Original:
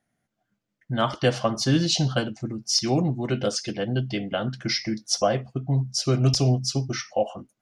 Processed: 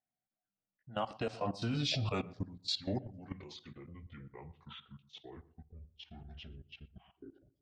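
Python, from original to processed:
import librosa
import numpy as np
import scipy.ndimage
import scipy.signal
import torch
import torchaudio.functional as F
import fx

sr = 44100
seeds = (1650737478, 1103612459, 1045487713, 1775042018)

y = fx.pitch_glide(x, sr, semitones=-11.5, runs='starting unshifted')
y = fx.doppler_pass(y, sr, speed_mps=7, closest_m=2.8, pass_at_s=1.95)
y = fx.peak_eq(y, sr, hz=760.0, db=9.5, octaves=0.41)
y = fx.level_steps(y, sr, step_db=16)
y = fx.echo_filtered(y, sr, ms=121, feedback_pct=33, hz=1100.0, wet_db=-18)
y = F.gain(torch.from_numpy(y), -1.5).numpy()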